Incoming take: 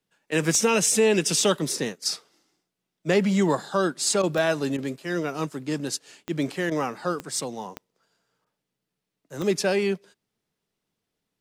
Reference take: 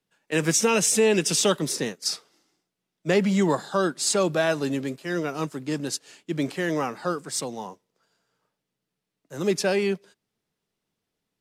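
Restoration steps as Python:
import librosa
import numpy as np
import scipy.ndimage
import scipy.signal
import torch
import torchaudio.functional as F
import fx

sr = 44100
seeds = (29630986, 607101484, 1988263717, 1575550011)

y = fx.fix_declick_ar(x, sr, threshold=10.0)
y = fx.fix_interpolate(y, sr, at_s=(4.22, 4.77, 6.7, 8.45), length_ms=12.0)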